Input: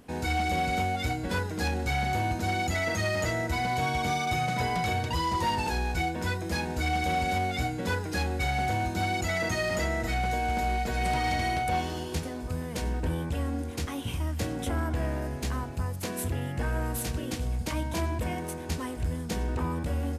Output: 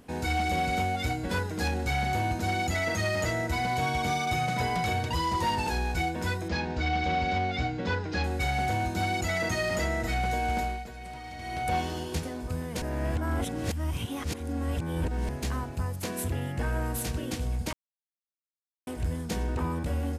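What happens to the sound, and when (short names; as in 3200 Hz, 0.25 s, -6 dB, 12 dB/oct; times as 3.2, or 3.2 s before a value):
6.48–8.24 LPF 5300 Hz 24 dB/oct
10.59–11.69 dip -14 dB, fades 0.40 s quadratic
12.82–15.29 reverse
17.73–18.87 mute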